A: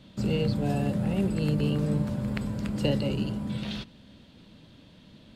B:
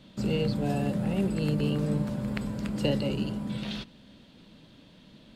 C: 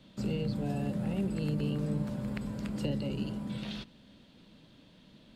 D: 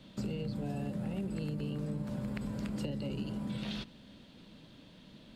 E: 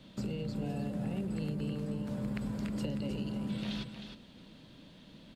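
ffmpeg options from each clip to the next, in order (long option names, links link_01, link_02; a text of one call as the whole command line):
ffmpeg -i in.wav -af "equalizer=frequency=88:width_type=o:width=0.81:gain=-8" out.wav
ffmpeg -i in.wav -filter_complex "[0:a]acrossover=split=310[link_01][link_02];[link_02]acompressor=threshold=-36dB:ratio=2.5[link_03];[link_01][link_03]amix=inputs=2:normalize=0,volume=-4dB" out.wav
ffmpeg -i in.wav -af "acompressor=threshold=-36dB:ratio=6,volume=2.5dB" out.wav
ffmpeg -i in.wav -af "aecho=1:1:311:0.398" out.wav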